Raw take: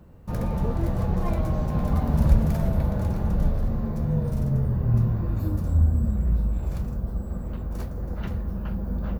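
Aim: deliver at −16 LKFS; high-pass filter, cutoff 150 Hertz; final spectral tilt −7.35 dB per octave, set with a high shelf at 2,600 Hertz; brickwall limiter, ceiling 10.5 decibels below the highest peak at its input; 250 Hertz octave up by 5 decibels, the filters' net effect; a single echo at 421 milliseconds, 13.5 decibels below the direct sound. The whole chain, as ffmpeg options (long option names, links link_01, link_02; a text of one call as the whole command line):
ffmpeg -i in.wav -af "highpass=150,equalizer=frequency=250:width_type=o:gain=8.5,highshelf=frequency=2600:gain=6.5,alimiter=limit=-21.5dB:level=0:latency=1,aecho=1:1:421:0.211,volume=14dB" out.wav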